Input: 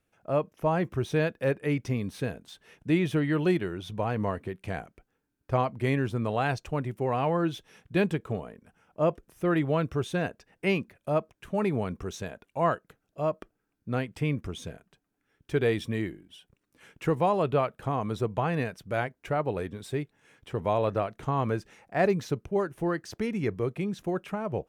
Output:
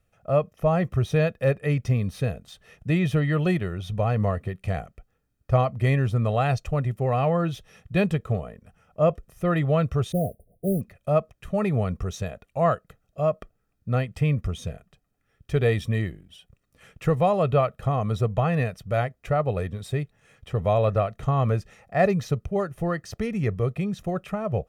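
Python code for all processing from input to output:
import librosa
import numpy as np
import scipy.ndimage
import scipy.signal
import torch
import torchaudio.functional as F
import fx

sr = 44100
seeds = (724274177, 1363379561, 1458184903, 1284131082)

y = fx.chain(x, sr, fx.mod_noise(seeds[0], snr_db=17),
    fx.brickwall_bandstop(low_hz=740.0, high_hz=8900.0), at=(10.12, 10.81))
y = fx.low_shelf(y, sr, hz=160.0, db=9.0)
y = y + 0.57 * np.pad(y, (int(1.6 * sr / 1000.0), 0))[:len(y)]
y = F.gain(torch.from_numpy(y), 1.0).numpy()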